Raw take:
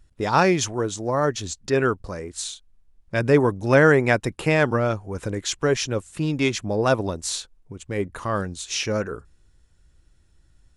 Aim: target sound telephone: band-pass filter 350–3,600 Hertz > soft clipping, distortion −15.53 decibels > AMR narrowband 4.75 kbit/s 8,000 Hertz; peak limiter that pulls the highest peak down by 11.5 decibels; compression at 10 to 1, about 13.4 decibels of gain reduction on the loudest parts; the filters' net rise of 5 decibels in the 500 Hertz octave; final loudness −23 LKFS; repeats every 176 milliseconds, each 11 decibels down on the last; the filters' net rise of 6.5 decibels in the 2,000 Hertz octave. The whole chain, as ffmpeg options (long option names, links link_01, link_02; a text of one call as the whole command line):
ffmpeg -i in.wav -af "equalizer=frequency=500:width_type=o:gain=7,equalizer=frequency=2000:width_type=o:gain=8.5,acompressor=threshold=-19dB:ratio=10,alimiter=limit=-20dB:level=0:latency=1,highpass=350,lowpass=3600,aecho=1:1:176|352|528:0.282|0.0789|0.0221,asoftclip=threshold=-25dB,volume=13dB" -ar 8000 -c:a libopencore_amrnb -b:a 4750 out.amr